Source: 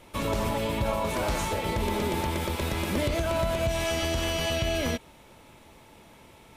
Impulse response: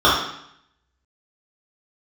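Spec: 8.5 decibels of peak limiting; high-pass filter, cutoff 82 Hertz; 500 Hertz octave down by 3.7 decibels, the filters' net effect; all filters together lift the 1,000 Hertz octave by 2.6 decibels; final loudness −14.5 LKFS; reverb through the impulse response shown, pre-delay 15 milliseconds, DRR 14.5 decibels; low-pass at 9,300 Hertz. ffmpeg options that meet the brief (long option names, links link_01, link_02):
-filter_complex "[0:a]highpass=82,lowpass=9300,equalizer=frequency=500:width_type=o:gain=-8,equalizer=frequency=1000:width_type=o:gain=5.5,alimiter=level_in=0.5dB:limit=-24dB:level=0:latency=1,volume=-0.5dB,asplit=2[link_01][link_02];[1:a]atrim=start_sample=2205,adelay=15[link_03];[link_02][link_03]afir=irnorm=-1:irlink=0,volume=-40dB[link_04];[link_01][link_04]amix=inputs=2:normalize=0,volume=18.5dB"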